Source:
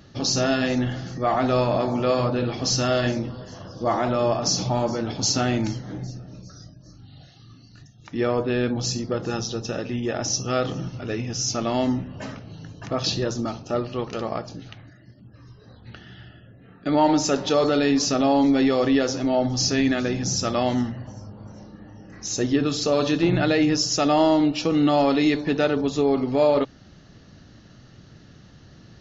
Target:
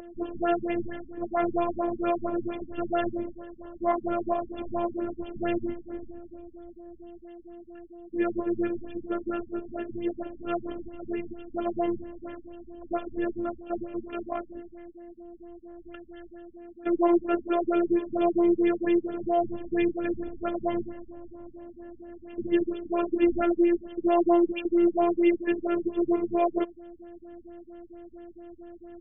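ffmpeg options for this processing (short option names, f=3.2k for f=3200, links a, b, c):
-af "aeval=exprs='val(0)+0.0501*sin(2*PI*500*n/s)':c=same,afftfilt=real='hypot(re,im)*cos(PI*b)':imag='0':win_size=512:overlap=0.75,afftfilt=real='re*lt(b*sr/1024,260*pow(3500/260,0.5+0.5*sin(2*PI*4.4*pts/sr)))':imag='im*lt(b*sr/1024,260*pow(3500/260,0.5+0.5*sin(2*PI*4.4*pts/sr)))':win_size=1024:overlap=0.75"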